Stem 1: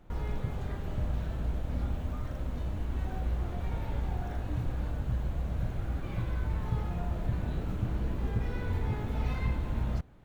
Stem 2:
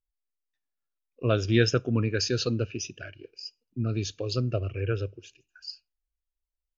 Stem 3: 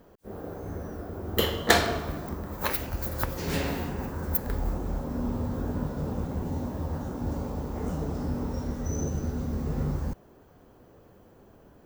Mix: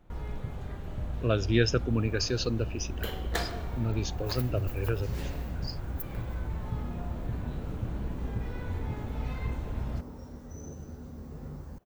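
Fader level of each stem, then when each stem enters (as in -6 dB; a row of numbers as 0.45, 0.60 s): -3.0, -2.5, -12.5 dB; 0.00, 0.00, 1.65 s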